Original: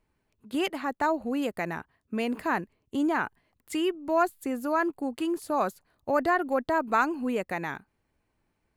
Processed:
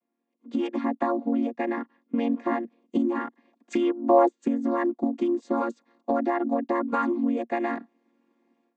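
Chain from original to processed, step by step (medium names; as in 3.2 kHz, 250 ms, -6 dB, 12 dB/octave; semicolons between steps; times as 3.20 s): vocoder on a held chord minor triad, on A#3; compression 6:1, threshold -35 dBFS, peak gain reduction 15 dB; 0.81–2.53 s: distance through air 64 m; level rider gain up to 16 dB; 3.81–4.41 s: peaking EQ 1.4 kHz -> 390 Hz +12 dB 1.1 oct; trim -3.5 dB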